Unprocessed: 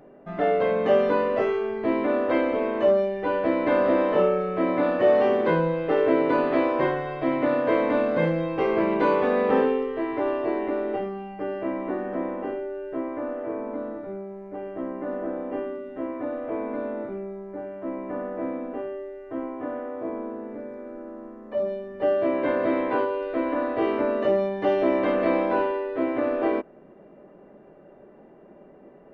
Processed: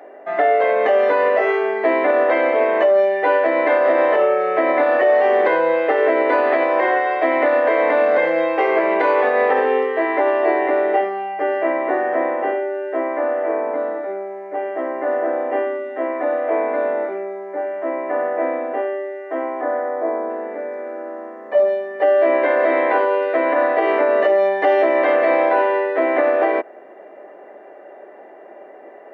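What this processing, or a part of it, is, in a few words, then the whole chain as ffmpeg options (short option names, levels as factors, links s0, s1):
laptop speaker: -filter_complex "[0:a]asettb=1/sr,asplit=3[s0][s1][s2];[s0]atrim=end=19.614[s3];[s1]atrim=start=19.61:end=20.3,asetpts=PTS-STARTPTS,afade=t=in:d=0.004:c=qsin,afade=t=out:st=0.686:d=0.004:c=qsin,equalizer=f=2700:t=o:w=0.49:g=-11.5[s4];[s2]atrim=start=20.296[s5];[s3][s4]acrossfade=d=0.004:c1=hsin:c2=qsin[s6];[s6][s5]acrossfade=d=0.004:c1=qsin:c2=hsin,highpass=f=340:w=0.5412,highpass=f=340:w=1.3066,equalizer=f=720:t=o:w=0.6:g=9,equalizer=f=1900:t=o:w=0.56:g=11,alimiter=limit=0.188:level=0:latency=1:release=153,volume=2.24"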